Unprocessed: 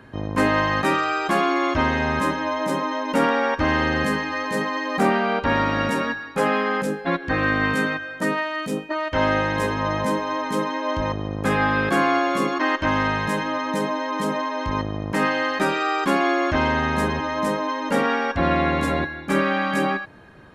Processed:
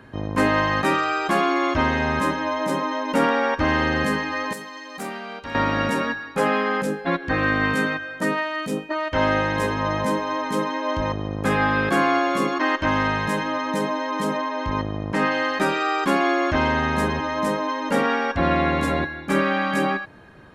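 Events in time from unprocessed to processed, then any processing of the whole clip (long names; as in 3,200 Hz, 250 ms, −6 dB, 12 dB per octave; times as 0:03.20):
0:04.53–0:05.55: first-order pre-emphasis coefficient 0.8
0:14.37–0:15.32: high-frequency loss of the air 51 metres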